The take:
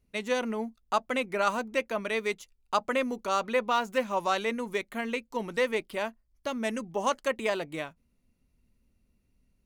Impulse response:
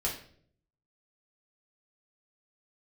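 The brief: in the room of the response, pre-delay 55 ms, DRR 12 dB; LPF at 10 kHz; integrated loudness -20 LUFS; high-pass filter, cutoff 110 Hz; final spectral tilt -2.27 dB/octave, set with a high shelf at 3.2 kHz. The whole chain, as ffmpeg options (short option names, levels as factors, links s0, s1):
-filter_complex "[0:a]highpass=110,lowpass=10000,highshelf=f=3200:g=-4,asplit=2[s0][s1];[1:a]atrim=start_sample=2205,adelay=55[s2];[s1][s2]afir=irnorm=-1:irlink=0,volume=0.133[s3];[s0][s3]amix=inputs=2:normalize=0,volume=3.35"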